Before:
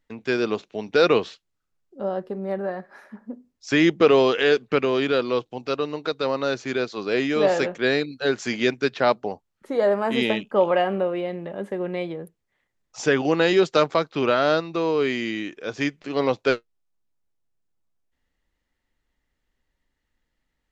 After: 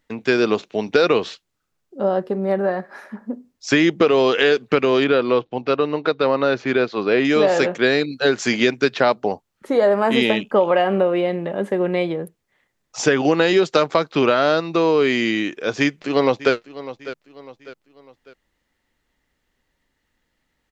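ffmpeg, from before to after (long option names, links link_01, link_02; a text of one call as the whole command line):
ffmpeg -i in.wav -filter_complex "[0:a]asettb=1/sr,asplit=3[link_01][link_02][link_03];[link_01]atrim=end=5.044[link_04];[link_02]atrim=start=5.04:end=7.25,asetpts=PTS-STARTPTS,afade=type=in:duration=0.004:curve=qsin,afade=type=out:start_time=2.206:duration=0.004:curve=qsin,lowpass=3100[link_05];[link_03]atrim=start=7.246[link_06];[link_04][link_05]acrossfade=duration=0.004:curve1=hsin:curve2=qsin[link_07];[link_07][link_06]acrossfade=duration=0.004:curve1=qsin:curve2=hsin,asplit=2[link_08][link_09];[link_09]afade=type=in:start_time=15.79:duration=0.01,afade=type=out:start_time=16.53:duration=0.01,aecho=0:1:600|1200|1800:0.125893|0.050357|0.0201428[link_10];[link_08][link_10]amix=inputs=2:normalize=0,lowshelf=frequency=60:gain=-9.5,acompressor=threshold=-20dB:ratio=6,volume=8dB" out.wav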